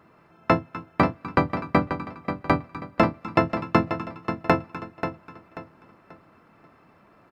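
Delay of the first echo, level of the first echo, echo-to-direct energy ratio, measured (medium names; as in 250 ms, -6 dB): 536 ms, -9.0 dB, -8.5 dB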